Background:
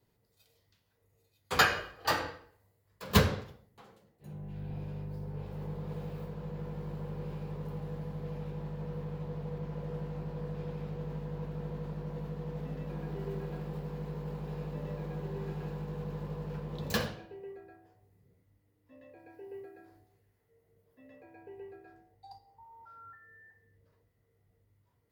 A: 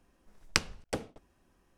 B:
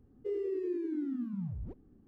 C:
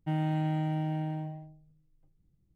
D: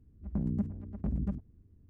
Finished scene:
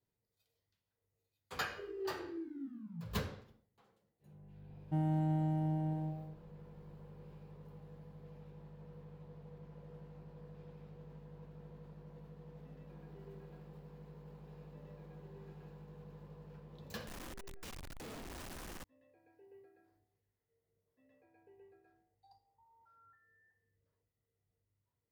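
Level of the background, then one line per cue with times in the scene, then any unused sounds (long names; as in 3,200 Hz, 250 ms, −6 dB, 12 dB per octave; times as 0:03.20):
background −14.5 dB
0:01.53: mix in B −11.5 dB + flutter between parallel walls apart 3.1 metres, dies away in 0.28 s
0:04.85: mix in C −3 dB + parametric band 2,500 Hz −14 dB 1.6 octaves
0:17.07: mix in A −8 dB + sign of each sample alone
not used: D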